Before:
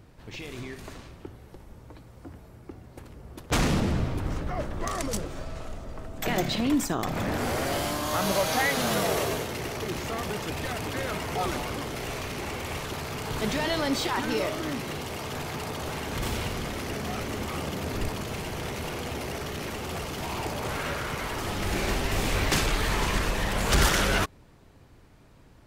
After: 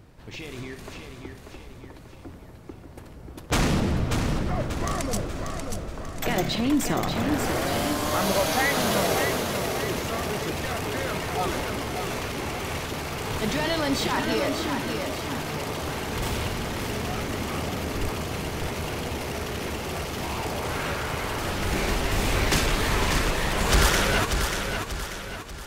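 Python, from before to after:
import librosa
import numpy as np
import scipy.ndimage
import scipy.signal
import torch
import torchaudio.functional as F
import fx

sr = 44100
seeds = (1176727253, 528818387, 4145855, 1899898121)

y = fx.echo_feedback(x, sr, ms=588, feedback_pct=46, wet_db=-6)
y = y * librosa.db_to_amplitude(1.5)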